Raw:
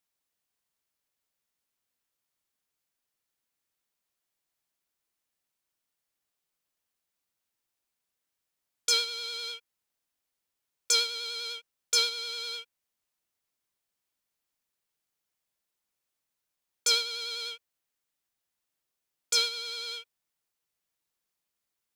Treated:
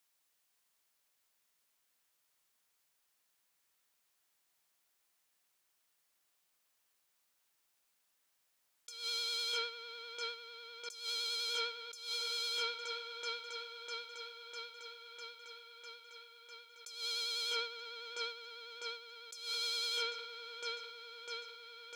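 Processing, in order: bass shelf 430 Hz -10 dB; feedback echo behind a low-pass 651 ms, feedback 72%, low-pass 2 kHz, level -7.5 dB; compressor with a negative ratio -40 dBFS, ratio -1; dynamic bell 2.1 kHz, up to -3 dB, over -52 dBFS, Q 0.75; trim +1 dB

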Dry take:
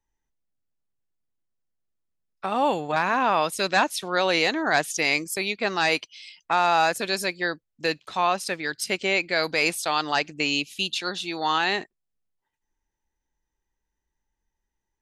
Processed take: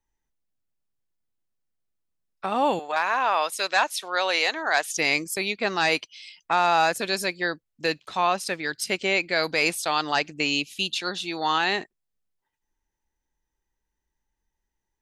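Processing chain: 2.79–4.91 s: high-pass 580 Hz 12 dB/octave

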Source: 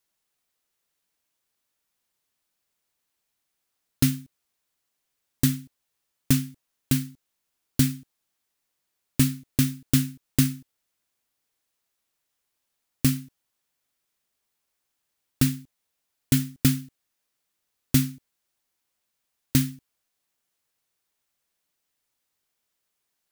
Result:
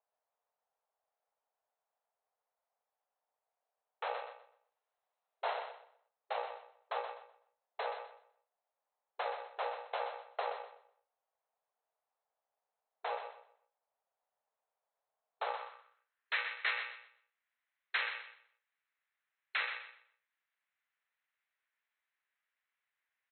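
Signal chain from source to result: bit-reversed sample order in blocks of 128 samples; 4.14–5.59 s: treble shelf 2.6 kHz +12 dB; waveshaping leveller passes 1; peak limiter -5 dBFS, peak gain reduction 9 dB; wavefolder -20 dBFS; brick-wall FIR band-pass 400–4200 Hz; on a send: feedback delay 125 ms, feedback 29%, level -7.5 dB; on the sum: band-pass sweep 740 Hz -> 1.9 kHz, 15.37–16.35 s; tape noise reduction on one side only decoder only; trim +7.5 dB

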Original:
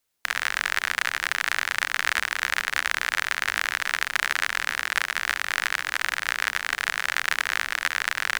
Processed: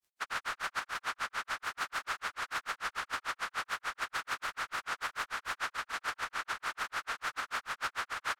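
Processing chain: frequency-domain pitch shifter -4 st; hard clipper -25 dBFS, distortion -14 dB; granulator 116 ms, grains 6.8 per s, spray 24 ms, pitch spread up and down by 0 st; speakerphone echo 270 ms, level -27 dB; gain riding 0.5 s; trim -2 dB

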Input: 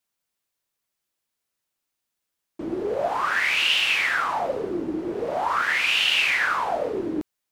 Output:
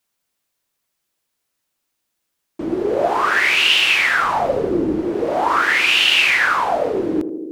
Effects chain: 4.22–5.05 s: bass shelf 170 Hz +8.5 dB; band-passed feedback delay 80 ms, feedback 85%, band-pass 320 Hz, level -9.5 dB; trim +6.5 dB

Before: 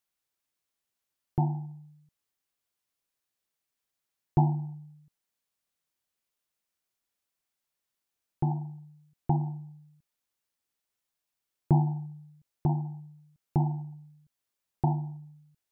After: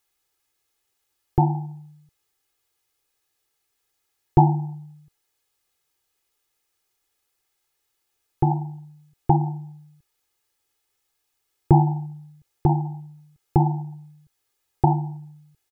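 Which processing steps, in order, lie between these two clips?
comb 2.4 ms, depth 70%; trim +8.5 dB

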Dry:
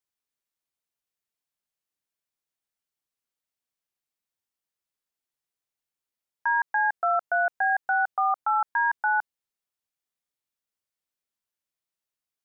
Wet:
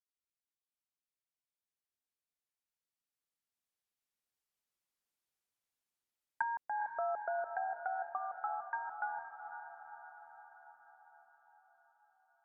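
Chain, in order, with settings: Doppler pass-by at 5.11 s, 5 m/s, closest 7.4 m; low-pass that closes with the level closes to 660 Hz, closed at -28.5 dBFS; echo that smears into a reverb 465 ms, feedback 60%, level -8.5 dB; trim -2 dB

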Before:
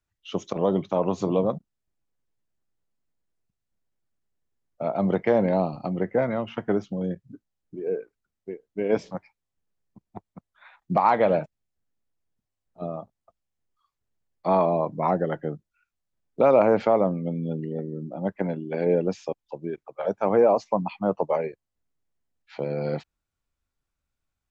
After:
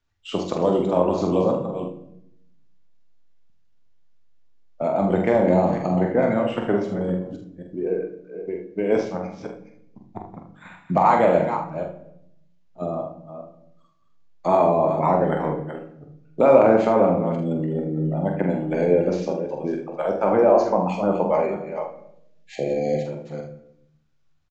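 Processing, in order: chunks repeated in reverse 263 ms, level -11 dB; 21.33–22.73 s: treble shelf 4.3 kHz +6 dB; in parallel at -2 dB: compression, threshold -31 dBFS, peak gain reduction 17 dB; on the sum: early reflections 45 ms -5.5 dB, 78 ms -11.5 dB; on a send at -6 dB: reverberation RT60 0.80 s, pre-delay 3 ms; on the sum: careless resampling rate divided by 4×, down none, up hold; 22.44–23.06 s: spectral selection erased 800–1600 Hz; resampled via 16 kHz

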